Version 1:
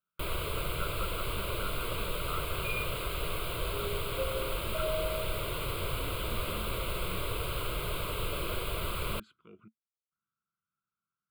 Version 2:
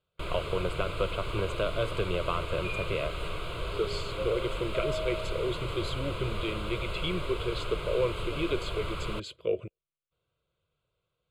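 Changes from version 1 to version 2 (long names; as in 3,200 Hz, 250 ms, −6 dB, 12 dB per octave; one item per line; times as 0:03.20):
speech: remove pair of resonant band-passes 550 Hz, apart 2.6 octaves
first sound: add parametric band 6,700 Hz +6 dB 0.38 octaves
master: add high-frequency loss of the air 86 metres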